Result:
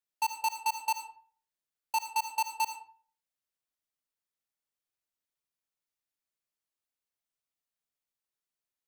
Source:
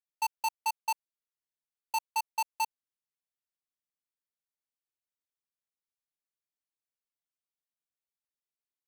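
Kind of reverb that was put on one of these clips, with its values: digital reverb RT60 0.48 s, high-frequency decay 0.65×, pre-delay 35 ms, DRR 7 dB; gain +1 dB

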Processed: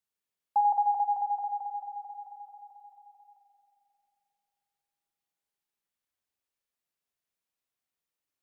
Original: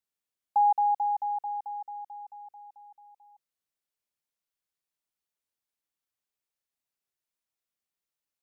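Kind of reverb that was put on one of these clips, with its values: spring tank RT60 2.8 s, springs 44 ms, chirp 55 ms, DRR 2 dB; gain -1 dB

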